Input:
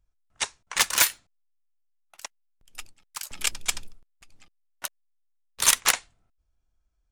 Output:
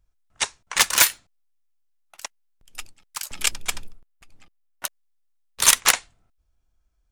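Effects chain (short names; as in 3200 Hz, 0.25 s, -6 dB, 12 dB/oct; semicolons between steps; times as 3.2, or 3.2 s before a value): 3.55–4.85 bell 6100 Hz -6 dB 2.2 oct; gain +4 dB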